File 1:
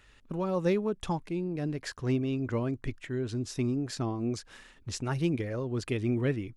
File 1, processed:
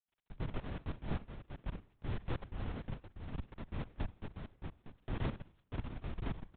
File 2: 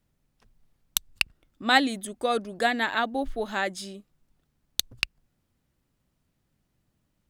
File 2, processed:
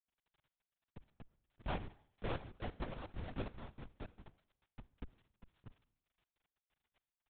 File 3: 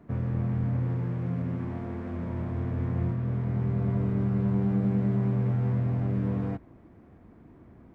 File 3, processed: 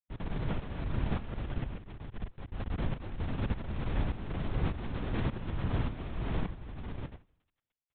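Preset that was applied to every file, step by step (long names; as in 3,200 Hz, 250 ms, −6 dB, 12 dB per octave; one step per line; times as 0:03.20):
sub-octave generator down 2 octaves, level 0 dB
low-pass filter 1,300 Hz 24 dB per octave
parametric band 560 Hz −3.5 dB 0.27 octaves
comb filter 6.6 ms, depth 41%
in parallel at +3 dB: downward compressor 12 to 1, threshold −37 dBFS
on the sum: comparator with hysteresis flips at −19.5 dBFS
surface crackle 10 per second −41 dBFS
harmonic generator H 5 −29 dB, 7 −30 dB, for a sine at −19 dBFS
on a send: single-tap delay 632 ms −7 dB
on the sum: shaped tremolo saw up 1.7 Hz, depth 75%
four-comb reverb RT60 0.7 s, combs from 30 ms, DRR 16.5 dB
linear-prediction vocoder at 8 kHz whisper
level −6 dB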